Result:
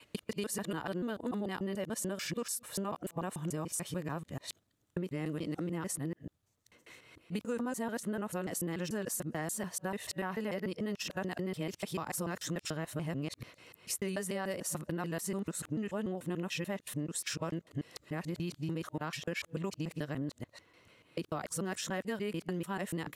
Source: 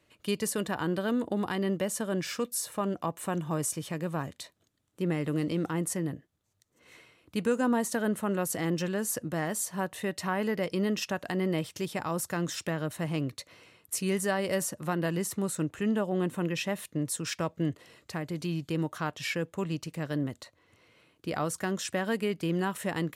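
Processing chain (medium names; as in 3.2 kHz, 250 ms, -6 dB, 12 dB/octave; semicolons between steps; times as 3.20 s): time reversed locally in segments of 146 ms; compression, threshold -33 dBFS, peak gain reduction 11 dB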